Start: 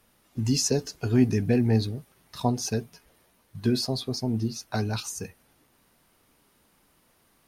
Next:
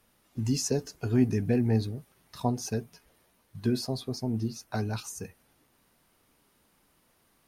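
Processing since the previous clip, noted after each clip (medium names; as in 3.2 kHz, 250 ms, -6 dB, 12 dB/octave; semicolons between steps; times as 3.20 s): dynamic bell 4 kHz, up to -5 dB, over -47 dBFS, Q 0.95; trim -3 dB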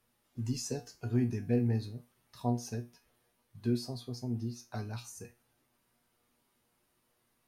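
feedback comb 120 Hz, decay 0.27 s, harmonics all, mix 80%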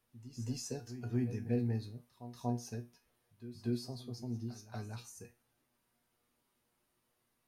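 pre-echo 237 ms -13 dB; trim -4.5 dB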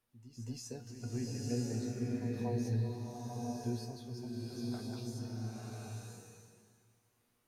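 swelling reverb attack 1020 ms, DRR -4 dB; trim -4 dB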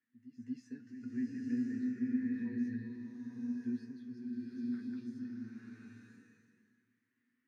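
two resonant band-passes 680 Hz, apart 2.8 oct; trim +6.5 dB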